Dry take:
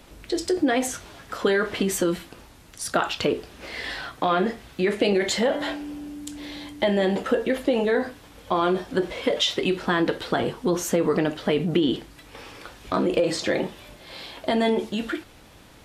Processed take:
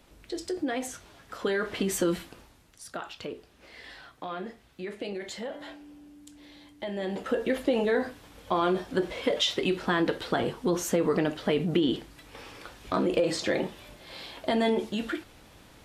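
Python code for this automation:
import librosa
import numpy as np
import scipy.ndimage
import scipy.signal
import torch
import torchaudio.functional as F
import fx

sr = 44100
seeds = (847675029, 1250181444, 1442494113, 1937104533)

y = fx.gain(x, sr, db=fx.line((1.22, -9.0), (2.2, -2.0), (2.86, -14.5), (6.79, -14.5), (7.48, -3.5)))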